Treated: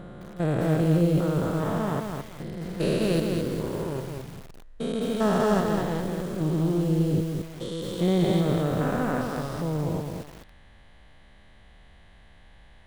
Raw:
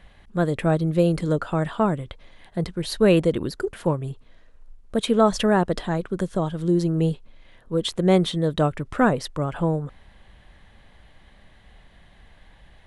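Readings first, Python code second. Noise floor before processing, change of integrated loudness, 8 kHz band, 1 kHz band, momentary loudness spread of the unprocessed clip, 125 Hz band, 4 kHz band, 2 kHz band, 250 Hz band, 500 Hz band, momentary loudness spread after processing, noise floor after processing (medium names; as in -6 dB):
-53 dBFS, -3.0 dB, -3.0 dB, -5.0 dB, 10 LU, -1.0 dB, -6.0 dB, -4.5 dB, -2.5 dB, -4.0 dB, 14 LU, -52 dBFS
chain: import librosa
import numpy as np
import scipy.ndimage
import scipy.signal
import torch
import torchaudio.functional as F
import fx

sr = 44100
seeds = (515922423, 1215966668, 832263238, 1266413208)

y = fx.spec_steps(x, sr, hold_ms=400)
y = fx.echo_crushed(y, sr, ms=213, feedback_pct=35, bits=7, wet_db=-4.0)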